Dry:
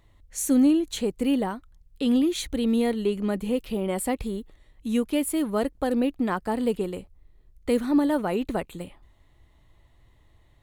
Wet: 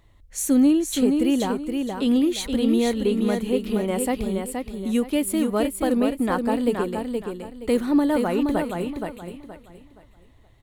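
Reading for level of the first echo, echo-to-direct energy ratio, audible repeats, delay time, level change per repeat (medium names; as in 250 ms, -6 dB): -5.0 dB, -4.5 dB, 3, 472 ms, -10.5 dB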